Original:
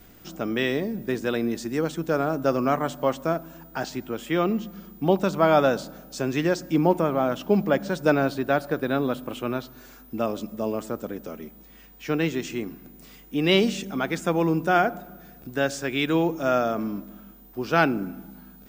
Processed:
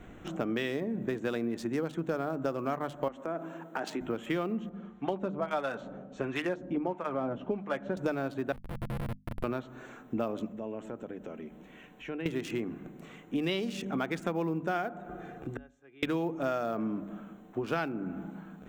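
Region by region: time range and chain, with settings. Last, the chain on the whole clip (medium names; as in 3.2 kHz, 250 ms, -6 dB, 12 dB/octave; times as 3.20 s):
3.08–4.01 s: high-pass 190 Hz 24 dB/octave + compression 4:1, threshold -32 dBFS
4.69–7.97 s: low-pass 4.9 kHz + harmonic tremolo 1.5 Hz, crossover 760 Hz + comb of notches 160 Hz
8.52–9.44 s: sorted samples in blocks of 128 samples + compression 16:1, threshold -30 dBFS + Schmitt trigger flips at -29 dBFS
10.48–12.26 s: peaking EQ 2.8 kHz +4 dB 0.52 oct + band-stop 1.2 kHz, Q 9.5 + compression 2.5:1, threshold -45 dBFS
15.09–16.03 s: comb 2.5 ms, depth 41% + inverted gate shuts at -25 dBFS, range -36 dB + three bands compressed up and down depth 40%
whole clip: local Wiener filter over 9 samples; compression 6:1, threshold -33 dBFS; hum notches 50/100/150/200/250 Hz; trim +4 dB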